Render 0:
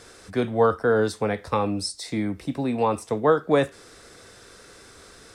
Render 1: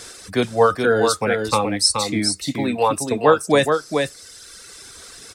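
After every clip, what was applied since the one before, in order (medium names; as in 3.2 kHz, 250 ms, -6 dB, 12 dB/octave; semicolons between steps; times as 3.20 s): reverb removal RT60 1.9 s; treble shelf 2.6 kHz +11.5 dB; delay 425 ms -5 dB; trim +4 dB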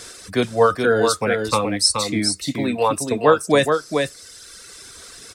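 band-stop 820 Hz, Q 12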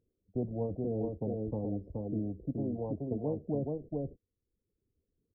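gate -30 dBFS, range -39 dB; Gaussian low-pass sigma 24 samples; spectrum-flattening compressor 2:1; trim -8 dB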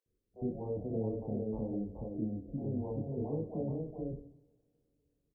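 bands offset in time highs, lows 60 ms, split 570 Hz; chorus voices 2, 0.52 Hz, delay 26 ms, depth 2.8 ms; two-slope reverb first 0.66 s, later 3.1 s, from -26 dB, DRR 5.5 dB; trim +1.5 dB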